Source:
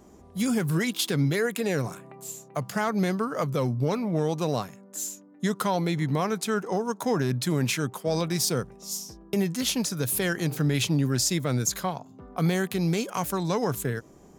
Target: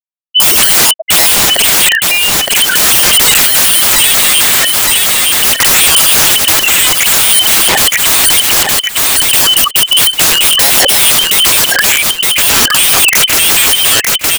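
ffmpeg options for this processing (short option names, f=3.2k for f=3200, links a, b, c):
-filter_complex "[0:a]afftfilt=real='re*pow(10,13/40*sin(2*PI*(1*log(max(b,1)*sr/1024/100)/log(2)-(0.32)*(pts-256)/sr)))':imag='im*pow(10,13/40*sin(2*PI*(1*log(max(b,1)*sr/1024/100)/log(2)-(0.32)*(pts-256)/sr)))':win_size=1024:overlap=0.75,asplit=2[a][b];[b]acompressor=threshold=-36dB:ratio=6,volume=-3dB[c];[a][c]amix=inputs=2:normalize=0,asplit=2[d][e];[e]adelay=14,volume=-12dB[f];[d][f]amix=inputs=2:normalize=0,lowpass=f=2.7k:t=q:w=0.5098,lowpass=f=2.7k:t=q:w=0.6013,lowpass=f=2.7k:t=q:w=0.9,lowpass=f=2.7k:t=q:w=2.563,afreqshift=-3200,highpass=54,equalizer=f=1.7k:w=1.9:g=8.5,afftfilt=real='re*gte(hypot(re,im),0.112)':imag='im*gte(hypot(re,im),0.112)':win_size=1024:overlap=0.75,aeval=exprs='(mod(16.8*val(0)+1,2)-1)/16.8':c=same,aecho=1:1:915|1830|2745:0.224|0.0515|0.0118,alimiter=level_in=33.5dB:limit=-1dB:release=50:level=0:latency=1,volume=-1dB"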